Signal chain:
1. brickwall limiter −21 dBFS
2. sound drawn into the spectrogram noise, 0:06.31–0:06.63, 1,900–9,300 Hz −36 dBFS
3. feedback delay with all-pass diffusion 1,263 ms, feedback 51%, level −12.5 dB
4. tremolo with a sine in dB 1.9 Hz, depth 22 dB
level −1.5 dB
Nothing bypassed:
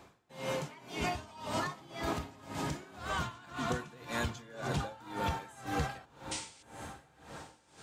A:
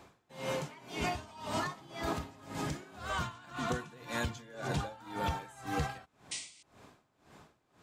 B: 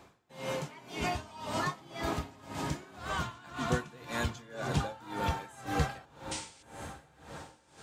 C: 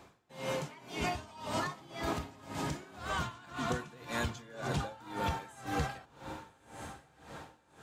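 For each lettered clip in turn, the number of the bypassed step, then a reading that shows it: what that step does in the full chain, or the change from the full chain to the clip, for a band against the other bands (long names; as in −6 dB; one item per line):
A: 3, change in momentary loudness spread −6 LU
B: 1, change in crest factor +4.5 dB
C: 2, 8 kHz band −2.0 dB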